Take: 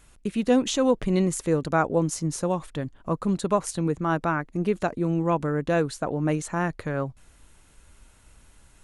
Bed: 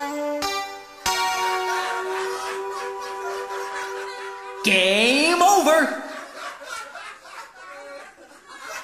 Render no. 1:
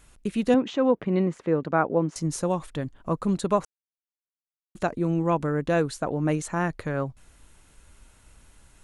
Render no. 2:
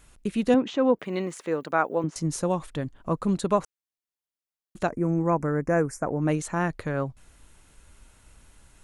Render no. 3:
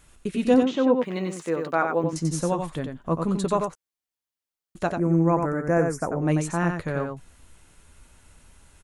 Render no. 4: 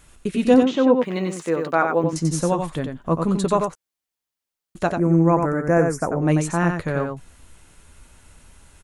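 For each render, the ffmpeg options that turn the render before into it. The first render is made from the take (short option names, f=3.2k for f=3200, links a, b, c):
-filter_complex "[0:a]asettb=1/sr,asplit=3[a][b][c];[a]atrim=end=0.544[d];[b]atrim=start=0.54:end=2.16,asetpts=PTS-STARTPTS,afade=t=in:d=0.004:c=qsin,afade=t=out:st=1.616:d=0.004:c=qsin,highpass=150,lowpass=2.2k[e];[c]atrim=start=2.156[f];[d][e]acrossfade=d=0.004:c1=hsin:c2=qsin[g];[g][f]acrossfade=d=0.004:c1=qsin:c2=hsin,asplit=3[h][i][j];[h]atrim=end=3.65,asetpts=PTS-STARTPTS,afade=t=out:st=3.646:d=0.004:c=hsin[k];[i]atrim=start=3.65:end=4.75,asetpts=PTS-STARTPTS,volume=0[l];[j]atrim=start=4.75,asetpts=PTS-STARTPTS,afade=t=in:d=0.004:c=hsin[m];[k][l][m]concat=n=3:v=0:a=1"
-filter_complex "[0:a]asettb=1/sr,asplit=3[a][b][c];[a]atrim=end=0.994[d];[b]atrim=start=0.99:end=2.04,asetpts=PTS-STARTPTS,afade=t=in:d=0.004:c=qsin,afade=t=out:st=1.046:d=0.004:c=qsin,aemphasis=mode=production:type=riaa[e];[c]atrim=start=2.036[f];[d][e]acrossfade=d=0.004:c1=hsin:c2=qsin[g];[g][f]acrossfade=d=0.004:c1=qsin:c2=hsin,asettb=1/sr,asplit=3[h][i][j];[h]atrim=end=4.894[k];[i]atrim=start=4.89:end=6.22,asetpts=PTS-STARTPTS,afade=t=in:d=0.004:c=qsin,afade=t=out:st=1.326:d=0.004:c=qsin,asuperstop=centerf=3500:order=8:qfactor=1.2[l];[j]atrim=start=6.216[m];[k][l]acrossfade=d=0.004:c1=hsin:c2=qsin[n];[n][m]acrossfade=d=0.004:c1=qsin:c2=hsin"
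-filter_complex "[0:a]asplit=2[a][b];[b]adelay=12,volume=-11dB[c];[a][c]amix=inputs=2:normalize=0,asplit=2[d][e];[e]aecho=0:1:91:0.531[f];[d][f]amix=inputs=2:normalize=0"
-af "volume=4dB"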